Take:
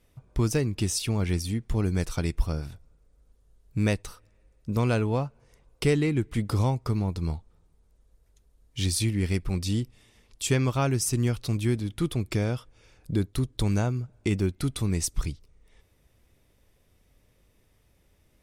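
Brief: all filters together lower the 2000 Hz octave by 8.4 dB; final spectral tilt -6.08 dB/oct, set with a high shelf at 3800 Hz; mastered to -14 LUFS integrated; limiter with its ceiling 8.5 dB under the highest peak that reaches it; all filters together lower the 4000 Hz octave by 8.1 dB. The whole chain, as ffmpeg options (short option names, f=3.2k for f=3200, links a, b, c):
-af "equalizer=f=2k:t=o:g=-8,highshelf=f=3.8k:g=-7,equalizer=f=4k:t=o:g=-3.5,volume=17.5dB,alimiter=limit=-2dB:level=0:latency=1"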